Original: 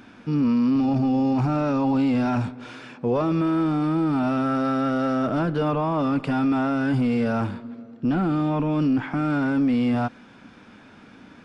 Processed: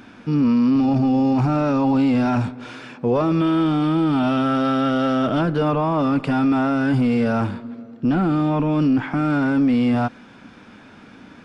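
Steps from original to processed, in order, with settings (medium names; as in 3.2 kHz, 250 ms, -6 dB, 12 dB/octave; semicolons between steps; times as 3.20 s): 3.40–5.41 s: peaking EQ 3.2 kHz +13 dB 0.29 oct; trim +3.5 dB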